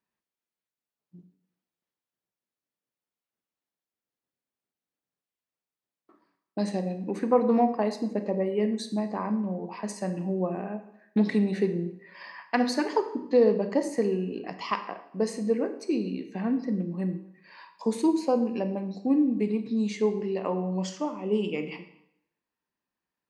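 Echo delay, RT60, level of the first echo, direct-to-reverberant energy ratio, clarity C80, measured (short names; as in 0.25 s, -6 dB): none, 0.75 s, none, 8.5 dB, 13.5 dB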